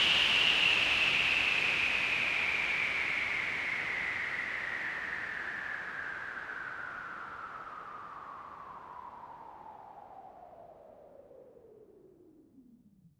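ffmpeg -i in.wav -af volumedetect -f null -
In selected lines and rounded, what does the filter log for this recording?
mean_volume: -34.5 dB
max_volume: -13.9 dB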